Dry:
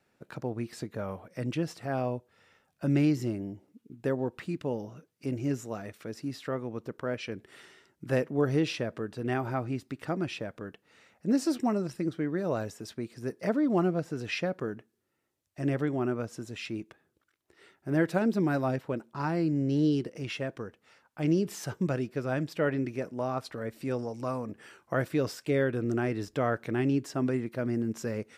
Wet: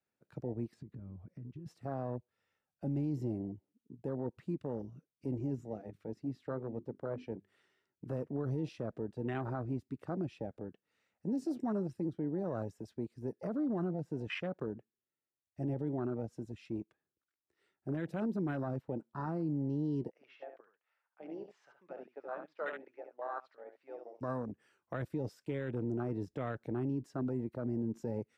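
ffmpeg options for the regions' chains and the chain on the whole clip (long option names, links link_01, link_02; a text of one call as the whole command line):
ffmpeg -i in.wav -filter_complex "[0:a]asettb=1/sr,asplit=3[link_01][link_02][link_03];[link_01]atrim=end=0.744[link_04];[link_02]atrim=start=0.74:end=1.66,asetpts=PTS-STARTPTS,afade=type=in:duration=0.004:curve=qsin,afade=type=out:start_time=0.916:duration=0.004:curve=qsin,lowpass=frequency=2700:poles=1,lowshelf=frequency=190:gain=11.5,acompressor=threshold=-39dB:ratio=20:attack=3.2:release=140:knee=1:detection=peak[link_05];[link_03]atrim=start=1.656[link_06];[link_04][link_05]acrossfade=duration=0.004:curve1=hsin:curve2=qsin[link_07];[link_07][link_06]acrossfade=duration=0.004:curve1=qsin:curve2=hsin,asettb=1/sr,asplit=3[link_08][link_09][link_10];[link_08]atrim=end=5.554[link_11];[link_09]atrim=start=5.55:end=8.05,asetpts=PTS-STARTPTS,afade=type=in:duration=0.004:curve=qsin,afade=type=out:start_time=2.496:duration=0.004:curve=qsin,highshelf=frequency=5800:gain=-8.5,bandreject=frequency=50:width_type=h:width=6,bandreject=frequency=100:width_type=h:width=6,bandreject=frequency=150:width_type=h:width=6,bandreject=frequency=200:width_type=h:width=6,bandreject=frequency=250:width_type=h:width=6,bandreject=frequency=300:width_type=h:width=6,bandreject=frequency=350:width_type=h:width=6,bandreject=frequency=400:width_type=h:width=6[link_12];[link_10]atrim=start=8.046[link_13];[link_11][link_12]acrossfade=duration=0.004:curve1=hsin:curve2=qsin[link_14];[link_14][link_13]acrossfade=duration=0.004:curve1=qsin:curve2=hsin,asettb=1/sr,asplit=3[link_15][link_16][link_17];[link_15]atrim=end=20.114[link_18];[link_16]atrim=start=20.11:end=24.21,asetpts=PTS-STARTPTS,afade=type=in:duration=0.004:curve=qsin,afade=type=out:start_time=4.096:duration=0.004:curve=qsin,highpass=790,lowpass=2400,aecho=1:1:72:0.473,atrim=end_sample=180810[link_19];[link_17]atrim=start=24.206[link_20];[link_18][link_19]acrossfade=duration=0.004:curve1=hsin:curve2=qsin[link_21];[link_21][link_20]acrossfade=duration=0.004:curve1=qsin:curve2=hsin,afwtdn=0.0178,acrossover=split=210|3000[link_22][link_23][link_24];[link_23]acompressor=threshold=-29dB:ratio=6[link_25];[link_22][link_25][link_24]amix=inputs=3:normalize=0,alimiter=level_in=1dB:limit=-24dB:level=0:latency=1:release=16,volume=-1dB,volume=-3dB" out.wav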